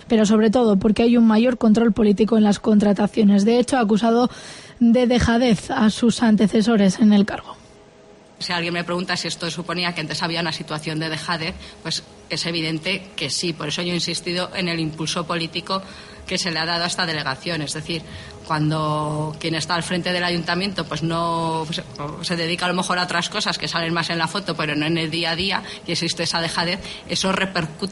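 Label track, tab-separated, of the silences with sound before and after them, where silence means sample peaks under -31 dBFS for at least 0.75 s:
7.520000	8.410000	silence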